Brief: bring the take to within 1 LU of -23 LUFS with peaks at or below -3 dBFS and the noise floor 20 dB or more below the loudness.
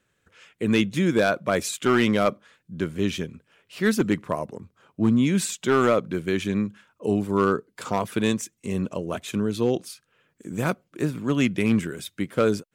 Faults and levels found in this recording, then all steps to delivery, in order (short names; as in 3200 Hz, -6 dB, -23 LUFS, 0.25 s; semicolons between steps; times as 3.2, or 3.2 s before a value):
clipped 0.4%; flat tops at -12.0 dBFS; loudness -24.5 LUFS; peak -12.0 dBFS; loudness target -23.0 LUFS
-> clip repair -12 dBFS; gain +1.5 dB